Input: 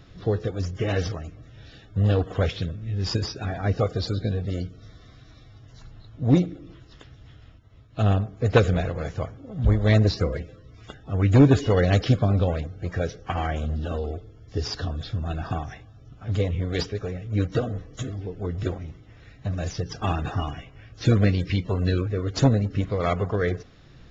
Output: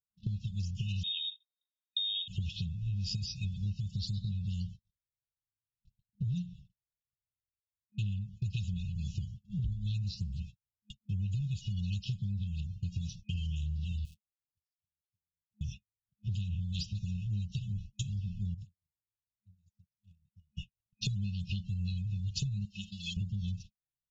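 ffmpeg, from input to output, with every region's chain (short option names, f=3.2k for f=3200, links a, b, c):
-filter_complex "[0:a]asettb=1/sr,asplit=3[a][b][c];[a]atrim=end=1.034[d];[b]atrim=start=1.03:end=2.28,asetpts=PTS-STARTPTS,afade=t=in:d=0.004:c=qsin,afade=t=out:st=1.246:d=0.004:c=qsin,acompressor=threshold=-22dB:ratio=6:attack=3.2:release=140:knee=1:detection=peak,lowpass=f=3.2k:t=q:w=0.5098,lowpass=f=3.2k:t=q:w=0.6013,lowpass=f=3.2k:t=q:w=0.9,lowpass=f=3.2k:t=q:w=2.563,afreqshift=-3800[e];[c]atrim=start=2.276[f];[d][e]acrossfade=d=0.004:c1=hsin:c2=qsin[g];[g][f]acrossfade=d=0.004:c1=qsin:c2=hsin,asettb=1/sr,asplit=3[h][i][j];[h]atrim=end=14.054[k];[i]atrim=start=14.05:end=15.61,asetpts=PTS-STARTPTS,afade=t=in:d=0.004:c=qsin,afade=t=out:st=1.556:d=0.004:c=qsin,lowshelf=f=420:g=-2,acompressor=threshold=-44dB:ratio=5:attack=3.2:release=140:knee=1:detection=peak,aeval=exprs='val(0)*gte(abs(val(0)),0.00562)':c=same[l];[j]atrim=start=15.606[m];[k][l]acrossfade=d=0.004:c1=hsin:c2=qsin[n];[n][m]acrossfade=d=0.004:c1=qsin:c2=hsin,asettb=1/sr,asplit=3[o][p][q];[o]atrim=end=18.544[r];[p]atrim=start=18.54:end=20.55,asetpts=PTS-STARTPTS,afade=t=in:d=0.004:c=qsin,afade=t=out:st=2.006:d=0.004:c=qsin,equalizer=f=2.2k:w=0.83:g=-14.5,acompressor=threshold=-45dB:ratio=3:attack=3.2:release=140:knee=1:detection=peak,aeval=exprs='0.0168*(abs(mod(val(0)/0.0168+3,4)-2)-1)':c=same[s];[q]atrim=start=20.546[t];[r][s]acrossfade=d=0.004:c1=hsin:c2=qsin[u];[u][t]acrossfade=d=0.004:c1=qsin:c2=hsin,asettb=1/sr,asplit=3[v][w][x];[v]atrim=end=22.654[y];[w]atrim=start=22.65:end=23.17,asetpts=PTS-STARTPTS,afade=t=in:d=0.004:c=qsin,afade=t=out:st=0.516:d=0.004:c=qsin,highpass=f=740:p=1,aecho=1:1:3.8:0.83,atrim=end_sample=22932[z];[x]atrim=start=23.166[aa];[y][z]acrossfade=d=0.004:c1=hsin:c2=qsin[ab];[ab][aa]acrossfade=d=0.004:c1=qsin:c2=hsin,agate=range=-57dB:threshold=-38dB:ratio=16:detection=peak,afftfilt=real='re*(1-between(b*sr/4096,210,2500))':imag='im*(1-between(b*sr/4096,210,2500))':win_size=4096:overlap=0.75,acompressor=threshold=-33dB:ratio=12,volume=1.5dB"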